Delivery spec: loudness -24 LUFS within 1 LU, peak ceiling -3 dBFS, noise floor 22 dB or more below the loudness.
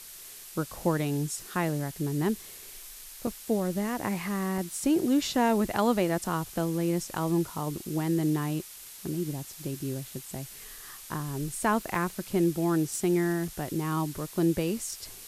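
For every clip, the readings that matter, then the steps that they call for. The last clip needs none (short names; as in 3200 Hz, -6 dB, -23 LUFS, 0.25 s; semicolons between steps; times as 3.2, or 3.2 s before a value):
dropouts 4; longest dropout 2.6 ms; noise floor -46 dBFS; noise floor target -52 dBFS; loudness -29.5 LUFS; peak -12.0 dBFS; loudness target -24.0 LUFS
-> interpolate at 3.27/4.58/11.95/13.48, 2.6 ms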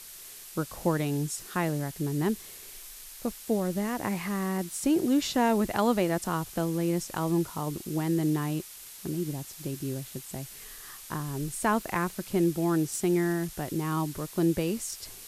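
dropouts 0; noise floor -46 dBFS; noise floor target -52 dBFS
-> noise print and reduce 6 dB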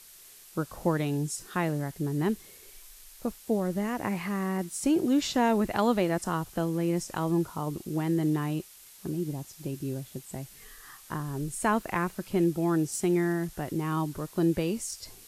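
noise floor -52 dBFS; loudness -29.5 LUFS; peak -12.5 dBFS; loudness target -24.0 LUFS
-> gain +5.5 dB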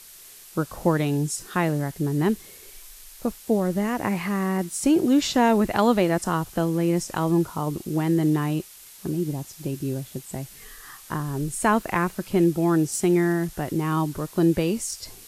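loudness -24.0 LUFS; peak -7.0 dBFS; noise floor -46 dBFS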